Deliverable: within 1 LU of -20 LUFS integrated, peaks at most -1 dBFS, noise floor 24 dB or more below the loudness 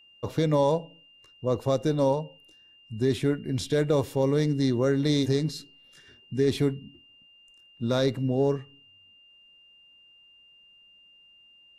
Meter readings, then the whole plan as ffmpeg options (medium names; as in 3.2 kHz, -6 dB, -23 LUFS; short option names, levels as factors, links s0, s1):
steady tone 2.8 kHz; tone level -54 dBFS; loudness -26.5 LUFS; peak level -12.5 dBFS; loudness target -20.0 LUFS
-> -af "bandreject=f=2800:w=30"
-af "volume=2.11"